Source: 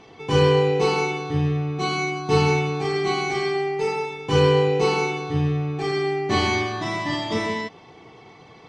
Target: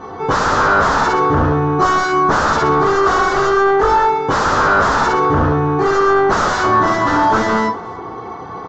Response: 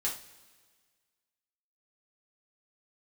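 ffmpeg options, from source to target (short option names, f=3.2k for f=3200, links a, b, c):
-filter_complex "[1:a]atrim=start_sample=2205,atrim=end_sample=4410[a];[0:a][a]afir=irnorm=-1:irlink=0,aeval=exprs='0.75*sin(PI/2*7.94*val(0)/0.75)':c=same,asplit=2[b][c];[c]adelay=280,highpass=300,lowpass=3.4k,asoftclip=type=hard:threshold=-11.5dB,volume=-16dB[d];[b][d]amix=inputs=2:normalize=0,aresample=16000,aresample=44100,highshelf=f=1.8k:t=q:w=3:g=-10.5,volume=-8.5dB"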